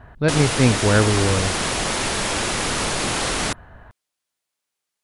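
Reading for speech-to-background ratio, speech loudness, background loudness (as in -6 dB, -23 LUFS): 2.0 dB, -20.0 LUFS, -22.0 LUFS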